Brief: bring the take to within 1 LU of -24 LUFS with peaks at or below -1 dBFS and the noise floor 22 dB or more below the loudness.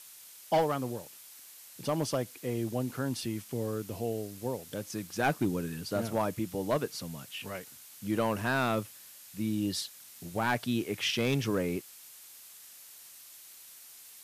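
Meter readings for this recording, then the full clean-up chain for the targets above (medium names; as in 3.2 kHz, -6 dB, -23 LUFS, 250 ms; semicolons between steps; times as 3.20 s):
clipped samples 0.3%; clipping level -20.5 dBFS; noise floor -52 dBFS; noise floor target -55 dBFS; loudness -33.0 LUFS; peak level -20.5 dBFS; loudness target -24.0 LUFS
-> clip repair -20.5 dBFS; noise print and reduce 6 dB; trim +9 dB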